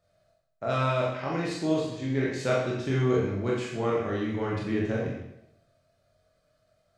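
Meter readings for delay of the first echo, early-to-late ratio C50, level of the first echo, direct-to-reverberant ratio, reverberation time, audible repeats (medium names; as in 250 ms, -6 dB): no echo, 1.5 dB, no echo, -5.0 dB, 0.85 s, no echo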